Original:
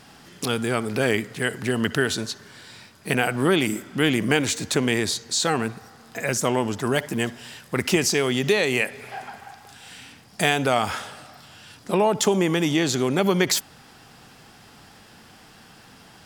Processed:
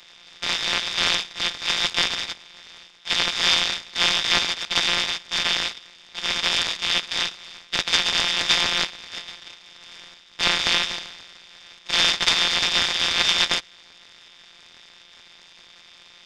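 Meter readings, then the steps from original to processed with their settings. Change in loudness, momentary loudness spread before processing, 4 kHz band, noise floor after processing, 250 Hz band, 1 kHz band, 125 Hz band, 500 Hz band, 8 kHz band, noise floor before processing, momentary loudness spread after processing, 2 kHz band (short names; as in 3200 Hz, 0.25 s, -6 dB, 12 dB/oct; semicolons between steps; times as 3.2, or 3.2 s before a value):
+2.0 dB, 17 LU, +10.0 dB, -50 dBFS, -16.0 dB, -2.0 dB, -14.5 dB, -13.5 dB, -1.0 dB, -50 dBFS, 14 LU, +2.0 dB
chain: sample sorter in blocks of 256 samples; inverted band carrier 3800 Hz; noise-modulated delay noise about 1300 Hz, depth 0.033 ms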